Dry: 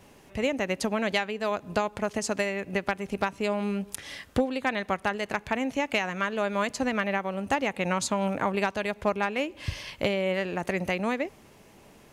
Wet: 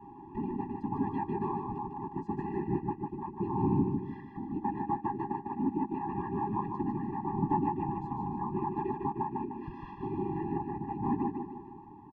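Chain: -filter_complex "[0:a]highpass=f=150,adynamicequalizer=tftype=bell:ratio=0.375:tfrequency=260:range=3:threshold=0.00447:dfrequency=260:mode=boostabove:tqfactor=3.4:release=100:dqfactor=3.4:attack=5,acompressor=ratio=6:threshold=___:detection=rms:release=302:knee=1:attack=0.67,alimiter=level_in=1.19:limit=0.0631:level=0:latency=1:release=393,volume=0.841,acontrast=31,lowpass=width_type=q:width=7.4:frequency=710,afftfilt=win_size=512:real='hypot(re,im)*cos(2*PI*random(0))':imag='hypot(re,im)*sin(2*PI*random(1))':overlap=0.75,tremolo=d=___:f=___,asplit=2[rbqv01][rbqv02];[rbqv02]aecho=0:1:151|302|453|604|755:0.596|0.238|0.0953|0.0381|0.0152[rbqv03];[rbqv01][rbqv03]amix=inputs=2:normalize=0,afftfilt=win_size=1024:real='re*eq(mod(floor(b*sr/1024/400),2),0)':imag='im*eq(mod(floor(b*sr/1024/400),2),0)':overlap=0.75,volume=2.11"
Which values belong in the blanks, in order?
0.0398, 0.42, 0.79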